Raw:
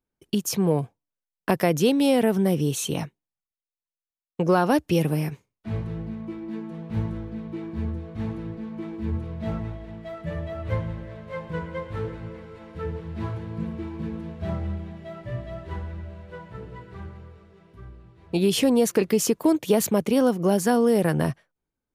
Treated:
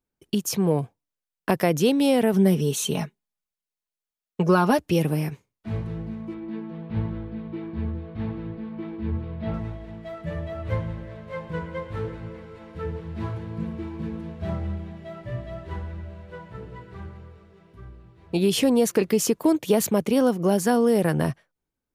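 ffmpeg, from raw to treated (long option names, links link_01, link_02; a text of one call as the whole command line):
ffmpeg -i in.wav -filter_complex "[0:a]asettb=1/sr,asplit=3[link_01][link_02][link_03];[link_01]atrim=end=2.334[link_04];[link_02]atrim=start=2.33:end=4.81,asetpts=PTS-STARTPTS,afade=type=in:duration=0.004:curve=qsin,afade=type=out:start_time=2.476:duration=0.004:curve=qsin,aecho=1:1:4.8:0.65,atrim=end_sample=109368[link_05];[link_03]atrim=start=4.806[link_06];[link_04][link_05]acrossfade=duration=0.004:curve1=hsin:curve2=qsin[link_07];[link_07][link_06]acrossfade=duration=0.004:curve1=qsin:curve2=hsin,asettb=1/sr,asplit=3[link_08][link_09][link_10];[link_08]atrim=end=6.344[link_11];[link_09]atrim=start=6.34:end=9.54,asetpts=PTS-STARTPTS,afade=type=in:duration=0.004:curve=qsin,afade=type=out:start_time=3.196:duration=0.004:curve=qsin,lowpass=frequency=4300:width=0.5412,lowpass=frequency=4300:width=1.3066[link_12];[link_10]atrim=start=9.536[link_13];[link_11][link_12]acrossfade=duration=0.004:curve1=hsin:curve2=qsin[link_14];[link_14][link_13]acrossfade=duration=0.004:curve1=qsin:curve2=hsin" out.wav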